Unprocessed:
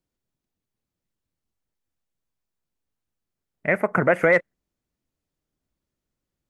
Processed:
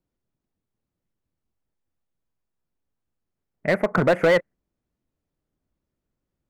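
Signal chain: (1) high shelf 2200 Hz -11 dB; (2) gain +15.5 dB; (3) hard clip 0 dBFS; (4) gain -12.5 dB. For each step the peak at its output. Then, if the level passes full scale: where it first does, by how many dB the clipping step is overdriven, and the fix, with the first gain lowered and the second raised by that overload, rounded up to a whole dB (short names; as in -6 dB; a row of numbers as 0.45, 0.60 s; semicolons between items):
-8.5, +7.0, 0.0, -12.5 dBFS; step 2, 7.0 dB; step 2 +8.5 dB, step 4 -5.5 dB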